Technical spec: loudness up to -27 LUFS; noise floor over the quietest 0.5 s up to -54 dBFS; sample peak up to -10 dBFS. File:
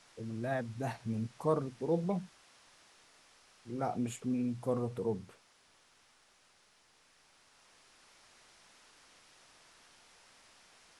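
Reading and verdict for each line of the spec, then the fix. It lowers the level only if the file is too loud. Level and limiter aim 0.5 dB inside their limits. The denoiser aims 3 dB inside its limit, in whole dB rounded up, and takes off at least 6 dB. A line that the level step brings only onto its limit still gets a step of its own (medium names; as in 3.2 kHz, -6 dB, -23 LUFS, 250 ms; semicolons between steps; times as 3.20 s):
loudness -36.5 LUFS: pass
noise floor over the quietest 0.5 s -67 dBFS: pass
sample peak -17.5 dBFS: pass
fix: none needed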